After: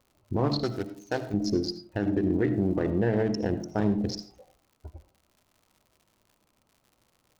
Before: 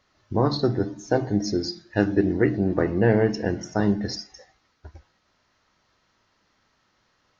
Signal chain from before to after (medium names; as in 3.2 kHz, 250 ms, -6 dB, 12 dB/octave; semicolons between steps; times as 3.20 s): local Wiener filter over 25 samples; crackle 130 per s -49 dBFS; 0.63–1.34 s: tilt shelf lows -9.5 dB, about 1.4 kHz; peak limiter -16.5 dBFS, peak gain reduction 11 dB; reverberation RT60 0.35 s, pre-delay 40 ms, DRR 12.5 dB